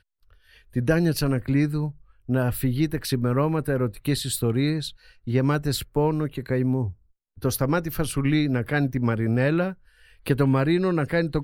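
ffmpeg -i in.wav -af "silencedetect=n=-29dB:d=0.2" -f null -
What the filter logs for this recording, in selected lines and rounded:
silence_start: 0.00
silence_end: 0.76 | silence_duration: 0.76
silence_start: 1.89
silence_end: 2.29 | silence_duration: 0.40
silence_start: 4.88
silence_end: 5.27 | silence_duration: 0.39
silence_start: 6.90
silence_end: 7.43 | silence_duration: 0.53
silence_start: 9.72
silence_end: 10.26 | silence_duration: 0.55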